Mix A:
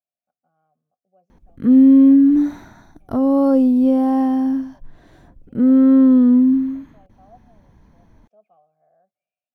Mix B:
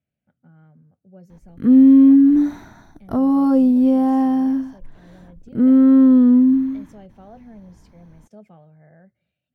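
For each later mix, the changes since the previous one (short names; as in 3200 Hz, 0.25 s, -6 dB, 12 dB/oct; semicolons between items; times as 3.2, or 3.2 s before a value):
speech: remove vowel filter a; background: add notch 550 Hz, Q 15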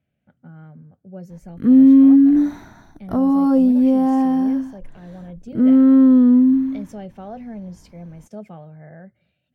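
speech +9.0 dB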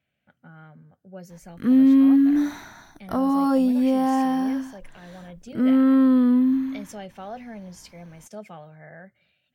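master: add tilt shelf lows -7.5 dB, about 750 Hz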